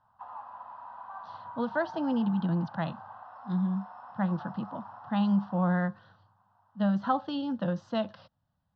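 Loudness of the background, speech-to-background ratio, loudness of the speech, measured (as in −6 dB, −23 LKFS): −45.5 LKFS, 14.5 dB, −31.0 LKFS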